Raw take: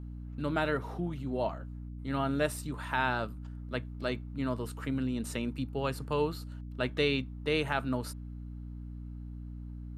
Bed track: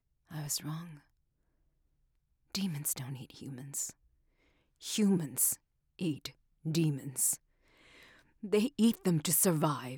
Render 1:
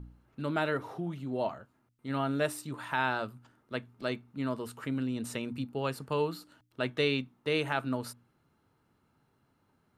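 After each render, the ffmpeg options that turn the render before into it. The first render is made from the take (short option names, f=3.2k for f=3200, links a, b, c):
-af "bandreject=f=60:t=h:w=4,bandreject=f=120:t=h:w=4,bandreject=f=180:t=h:w=4,bandreject=f=240:t=h:w=4,bandreject=f=300:t=h:w=4"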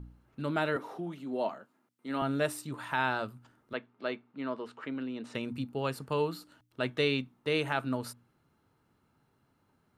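-filter_complex "[0:a]asettb=1/sr,asplit=3[a][b][c];[a]atrim=end=0.764[d];[b]atrim=start=0.76:end=2.22,asetpts=PTS-STARTPTS,afade=t=in:d=0.004:c=qsin,afade=t=out:st=1.456:d=0.004:c=qsin,highpass=f=190:w=0.5412,highpass=f=190:w=1.3066[e];[c]atrim=start=2.216[f];[d][e]acrossfade=d=0.004:c1=hsin:c2=qsin[g];[g][f]acrossfade=d=0.004:c1=qsin:c2=hsin,asettb=1/sr,asplit=3[h][i][j];[h]atrim=end=3.734[k];[i]atrim=start=3.73:end=5.35,asetpts=PTS-STARTPTS,afade=t=in:d=0.004:c=qsin,afade=t=out:st=1.616:d=0.004:c=qsin,highpass=280,lowpass=3.4k[l];[j]atrim=start=5.346[m];[k][l]acrossfade=d=0.004:c1=hsin:c2=qsin[n];[n][m]acrossfade=d=0.004:c1=qsin:c2=hsin"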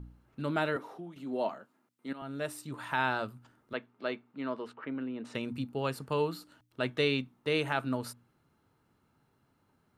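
-filter_complex "[0:a]asettb=1/sr,asplit=3[a][b][c];[a]atrim=end=4.734[d];[b]atrim=start=4.73:end=5.25,asetpts=PTS-STARTPTS,afade=t=in:d=0.004:c=qsin,afade=t=out:st=0.516:d=0.004:c=qsin,lowpass=2.3k[e];[c]atrim=start=5.246[f];[d][e]acrossfade=d=0.004:c1=hsin:c2=qsin[g];[g][f]acrossfade=d=0.004:c1=qsin:c2=hsin,asplit=3[h][i][j];[h]atrim=end=1.16,asetpts=PTS-STARTPTS,afade=t=out:st=0.63:d=0.53:silence=0.334965[k];[i]atrim=start=1.16:end=2.13,asetpts=PTS-STARTPTS,afade=t=in:d=0.004:c=hsin:silence=0.334965,afade=t=out:st=0.966:d=0.004:c=hsin:silence=0.158489[l];[j]atrim=start=2.13,asetpts=PTS-STARTPTS,afade=t=in:d=0.74:silence=0.158489[m];[k][l][m]concat=n=3:v=0:a=1"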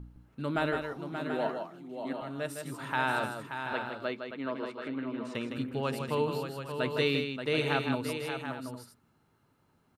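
-af "aecho=1:1:160|579|732|812:0.473|0.398|0.355|0.188"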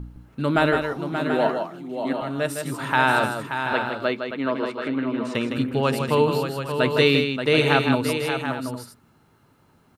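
-af "volume=10.5dB"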